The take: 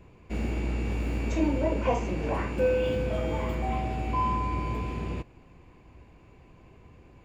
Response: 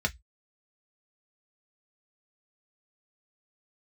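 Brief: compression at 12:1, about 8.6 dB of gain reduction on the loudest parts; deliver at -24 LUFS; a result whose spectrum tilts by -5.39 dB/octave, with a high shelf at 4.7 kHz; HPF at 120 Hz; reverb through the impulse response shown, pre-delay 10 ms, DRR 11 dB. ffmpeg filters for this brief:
-filter_complex "[0:a]highpass=120,highshelf=f=4700:g=9,acompressor=threshold=0.0355:ratio=12,asplit=2[s0][s1];[1:a]atrim=start_sample=2205,adelay=10[s2];[s1][s2]afir=irnorm=-1:irlink=0,volume=0.112[s3];[s0][s3]amix=inputs=2:normalize=0,volume=2.99"

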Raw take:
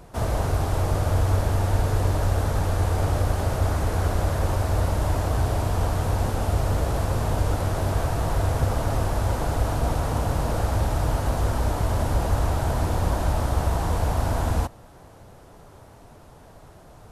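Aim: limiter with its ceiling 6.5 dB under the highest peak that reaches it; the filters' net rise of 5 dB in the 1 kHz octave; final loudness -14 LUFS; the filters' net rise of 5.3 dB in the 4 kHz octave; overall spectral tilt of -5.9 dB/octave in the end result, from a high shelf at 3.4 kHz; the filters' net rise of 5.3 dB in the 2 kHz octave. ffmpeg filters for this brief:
-af "equalizer=f=1000:t=o:g=5.5,equalizer=f=2000:t=o:g=4.5,highshelf=f=3400:g=-5,equalizer=f=4000:t=o:g=8.5,volume=3.55,alimiter=limit=0.668:level=0:latency=1"

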